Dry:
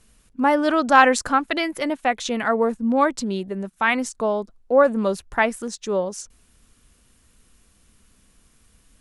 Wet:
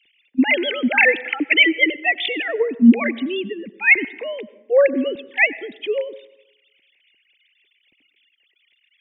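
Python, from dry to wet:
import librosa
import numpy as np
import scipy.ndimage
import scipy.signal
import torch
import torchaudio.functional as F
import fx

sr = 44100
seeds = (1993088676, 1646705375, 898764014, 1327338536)

y = fx.sine_speech(x, sr)
y = fx.curve_eq(y, sr, hz=(320.0, 1300.0, 2100.0), db=(0, -20, 13))
y = fx.rev_plate(y, sr, seeds[0], rt60_s=0.94, hf_ratio=0.5, predelay_ms=80, drr_db=18.0)
y = F.gain(torch.from_numpy(y), 5.0).numpy()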